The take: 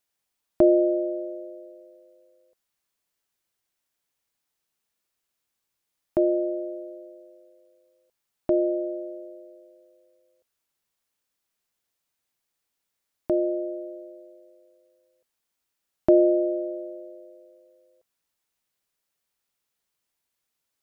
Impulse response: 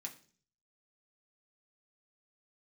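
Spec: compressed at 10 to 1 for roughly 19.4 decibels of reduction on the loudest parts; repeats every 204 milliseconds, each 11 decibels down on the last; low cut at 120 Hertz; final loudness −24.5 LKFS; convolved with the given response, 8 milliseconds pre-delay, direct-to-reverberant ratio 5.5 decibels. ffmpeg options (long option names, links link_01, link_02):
-filter_complex "[0:a]highpass=120,acompressor=threshold=-33dB:ratio=10,aecho=1:1:204|408|612:0.282|0.0789|0.0221,asplit=2[link_01][link_02];[1:a]atrim=start_sample=2205,adelay=8[link_03];[link_02][link_03]afir=irnorm=-1:irlink=0,volume=-2dB[link_04];[link_01][link_04]amix=inputs=2:normalize=0,volume=14.5dB"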